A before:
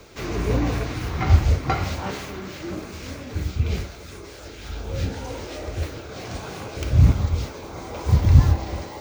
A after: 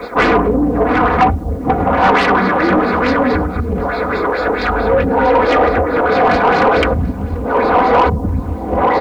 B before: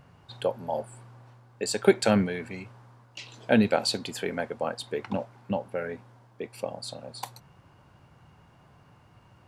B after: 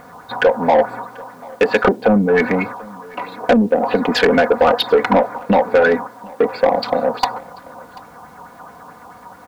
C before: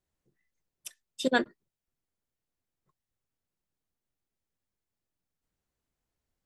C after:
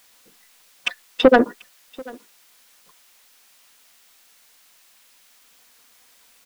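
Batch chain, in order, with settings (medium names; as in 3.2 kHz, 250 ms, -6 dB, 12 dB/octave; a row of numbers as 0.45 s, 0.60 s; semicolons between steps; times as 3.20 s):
local Wiener filter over 15 samples; low-pass that closes with the level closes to 340 Hz, closed at -18.5 dBFS; gate -48 dBFS, range -7 dB; comb 4.1 ms, depth 72%; compression 6:1, threshold -29 dBFS; LFO low-pass sine 4.6 Hz 910–4900 Hz; added noise blue -75 dBFS; overdrive pedal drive 23 dB, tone 2.6 kHz, clips at -13.5 dBFS; delay 738 ms -23.5 dB; peak normalisation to -3 dBFS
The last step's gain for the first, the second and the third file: +13.0 dB, +11.5 dB, +13.0 dB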